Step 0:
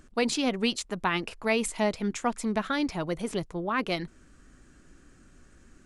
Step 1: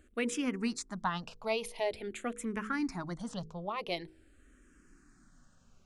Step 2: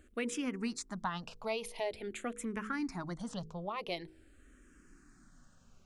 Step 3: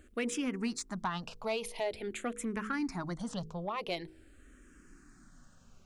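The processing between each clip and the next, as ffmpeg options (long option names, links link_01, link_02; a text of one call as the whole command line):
ffmpeg -i in.wav -filter_complex "[0:a]bandreject=frequency=53.33:width_type=h:width=4,bandreject=frequency=106.66:width_type=h:width=4,bandreject=frequency=159.99:width_type=h:width=4,bandreject=frequency=213.32:width_type=h:width=4,bandreject=frequency=266.65:width_type=h:width=4,bandreject=frequency=319.98:width_type=h:width=4,bandreject=frequency=373.31:width_type=h:width=4,bandreject=frequency=426.64:width_type=h:width=4,bandreject=frequency=479.97:width_type=h:width=4,asplit=2[link_01][link_02];[link_02]afreqshift=-0.46[link_03];[link_01][link_03]amix=inputs=2:normalize=1,volume=-4dB" out.wav
ffmpeg -i in.wav -af "acompressor=threshold=-41dB:ratio=1.5,volume=1dB" out.wav
ffmpeg -i in.wav -af "asoftclip=type=tanh:threshold=-26.5dB,volume=3dB" out.wav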